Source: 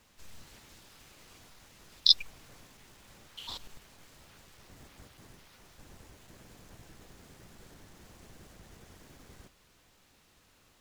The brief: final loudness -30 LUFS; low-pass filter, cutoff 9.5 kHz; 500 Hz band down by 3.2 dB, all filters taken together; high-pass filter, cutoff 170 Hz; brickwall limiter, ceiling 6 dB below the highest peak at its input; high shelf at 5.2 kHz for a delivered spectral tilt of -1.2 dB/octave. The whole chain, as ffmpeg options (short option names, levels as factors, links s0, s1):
-af "highpass=170,lowpass=9500,equalizer=f=500:t=o:g=-4,highshelf=f=5200:g=-5,volume=1.58,alimiter=limit=0.447:level=0:latency=1"